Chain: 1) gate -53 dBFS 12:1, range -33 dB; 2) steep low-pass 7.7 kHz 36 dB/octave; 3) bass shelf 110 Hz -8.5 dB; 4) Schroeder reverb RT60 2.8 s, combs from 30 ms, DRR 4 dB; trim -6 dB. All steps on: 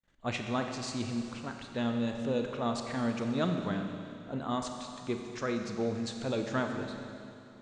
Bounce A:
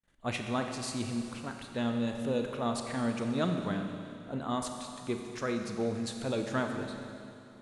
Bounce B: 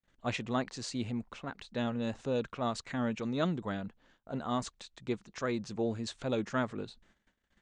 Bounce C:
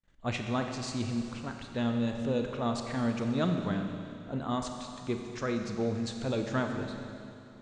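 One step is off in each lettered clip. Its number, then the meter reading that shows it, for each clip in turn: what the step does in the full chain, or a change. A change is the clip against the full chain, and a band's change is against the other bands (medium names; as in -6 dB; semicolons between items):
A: 2, 8 kHz band +3.0 dB; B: 4, momentary loudness spread change +1 LU; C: 3, 125 Hz band +3.5 dB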